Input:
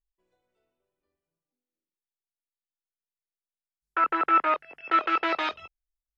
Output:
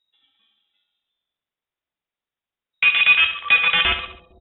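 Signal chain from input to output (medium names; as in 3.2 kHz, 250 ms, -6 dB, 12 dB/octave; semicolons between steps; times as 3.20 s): single-diode clipper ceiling -14 dBFS; in parallel at -1 dB: compression, threshold -31 dBFS, peak gain reduction 12.5 dB; on the sum: tempo 1.4×; on a send: feedback delay 68 ms, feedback 40%, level -9.5 dB; on the sum: frequency inversion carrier 3.8 kHz; bucket-brigade echo 227 ms, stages 1024, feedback 51%, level -15 dB; trim +6.5 dB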